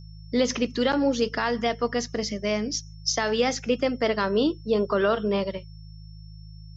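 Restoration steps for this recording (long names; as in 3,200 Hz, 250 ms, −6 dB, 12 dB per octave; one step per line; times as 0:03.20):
hum removal 53 Hz, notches 3
notch filter 5,400 Hz, Q 30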